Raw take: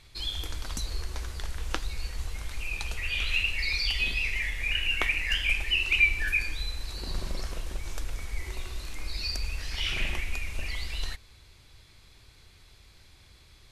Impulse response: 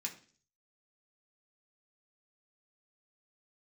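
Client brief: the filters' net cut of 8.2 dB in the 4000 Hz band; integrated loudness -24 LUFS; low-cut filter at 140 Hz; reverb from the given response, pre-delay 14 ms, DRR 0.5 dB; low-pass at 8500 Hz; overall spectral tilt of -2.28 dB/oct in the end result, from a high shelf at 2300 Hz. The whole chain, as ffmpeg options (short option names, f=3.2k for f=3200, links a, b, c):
-filter_complex "[0:a]highpass=140,lowpass=8.5k,highshelf=f=2.3k:g=-6.5,equalizer=f=4k:t=o:g=-6,asplit=2[a][b];[1:a]atrim=start_sample=2205,adelay=14[c];[b][c]afir=irnorm=-1:irlink=0,volume=0dB[d];[a][d]amix=inputs=2:normalize=0,volume=8dB"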